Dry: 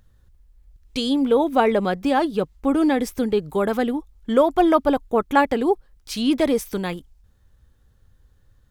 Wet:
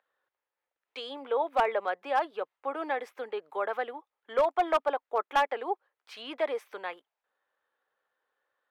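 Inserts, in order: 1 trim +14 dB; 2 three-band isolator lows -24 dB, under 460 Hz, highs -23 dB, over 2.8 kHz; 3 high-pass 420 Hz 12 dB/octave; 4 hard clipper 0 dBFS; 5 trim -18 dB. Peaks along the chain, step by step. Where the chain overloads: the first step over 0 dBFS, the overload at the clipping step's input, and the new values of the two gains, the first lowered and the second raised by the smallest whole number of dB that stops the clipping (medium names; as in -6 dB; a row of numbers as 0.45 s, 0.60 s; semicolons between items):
+9.5 dBFS, +9.0 dBFS, +8.0 dBFS, 0.0 dBFS, -18.0 dBFS; step 1, 8.0 dB; step 1 +6 dB, step 5 -10 dB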